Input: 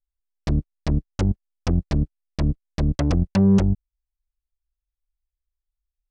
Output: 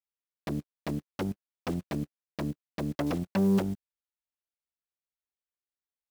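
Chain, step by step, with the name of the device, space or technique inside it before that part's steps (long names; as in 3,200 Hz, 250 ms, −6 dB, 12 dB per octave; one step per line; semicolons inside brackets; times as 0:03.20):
early digital voice recorder (band-pass filter 220–3,600 Hz; one scale factor per block 5 bits)
level −4 dB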